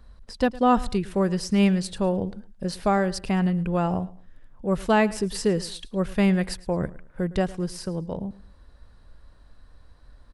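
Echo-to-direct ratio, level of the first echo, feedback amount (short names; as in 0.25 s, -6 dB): -19.0 dB, -19.5 dB, 30%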